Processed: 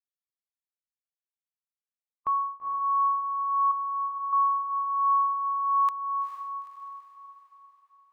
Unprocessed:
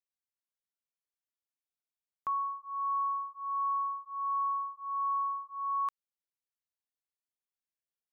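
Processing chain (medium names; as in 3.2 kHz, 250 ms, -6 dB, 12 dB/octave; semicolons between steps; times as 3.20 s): expander on every frequency bin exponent 2; peaking EQ 1.4 kHz -9.5 dB 0.24 oct; 3.71–4.33 s: compression, threshold -45 dBFS, peak gain reduction 12.5 dB; echo that smears into a reverb 451 ms, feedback 49%, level -6 dB; trim +8 dB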